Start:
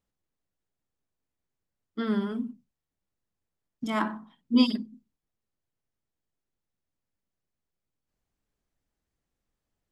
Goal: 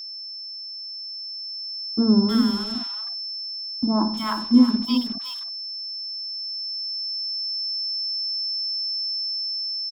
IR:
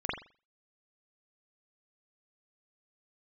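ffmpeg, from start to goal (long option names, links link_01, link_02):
-filter_complex "[0:a]asplit=2[link_01][link_02];[link_02]aecho=0:1:364:0.266[link_03];[link_01][link_03]amix=inputs=2:normalize=0,acrusher=bits=6:mix=0:aa=0.5,tiltshelf=frequency=770:gain=4.5,asplit=2[link_04][link_05];[link_05]alimiter=limit=-16dB:level=0:latency=1:release=318,volume=2.5dB[link_06];[link_04][link_06]amix=inputs=2:normalize=0,equalizer=frequency=125:width_type=o:width=1:gain=-8,equalizer=frequency=250:width_type=o:width=1:gain=3,equalizer=frequency=500:width_type=o:width=1:gain=-6,equalizer=frequency=1000:width_type=o:width=1:gain=7,equalizer=frequency=2000:width_type=o:width=1:gain=-7,equalizer=frequency=4000:width_type=o:width=1:gain=3,acrossover=split=970[link_07][link_08];[link_08]adelay=310[link_09];[link_07][link_09]amix=inputs=2:normalize=0,aeval=exprs='val(0)+0.0355*sin(2*PI*5300*n/s)':channel_layout=same,dynaudnorm=framelen=700:gausssize=5:maxgain=9dB,volume=-4dB"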